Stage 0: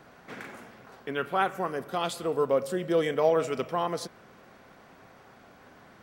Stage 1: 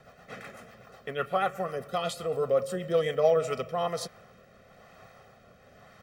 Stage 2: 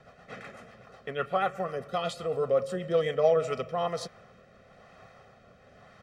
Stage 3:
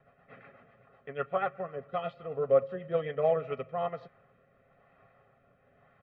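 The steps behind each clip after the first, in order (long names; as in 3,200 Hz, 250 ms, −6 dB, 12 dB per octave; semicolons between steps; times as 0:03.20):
comb filter 1.6 ms, depth 74%; rotating-speaker cabinet horn 8 Hz, later 1 Hz, at 0:02.89
high-frequency loss of the air 51 metres
low-pass filter 2,700 Hz 24 dB per octave; comb filter 7.3 ms, depth 36%; expander for the loud parts 1.5 to 1, over −38 dBFS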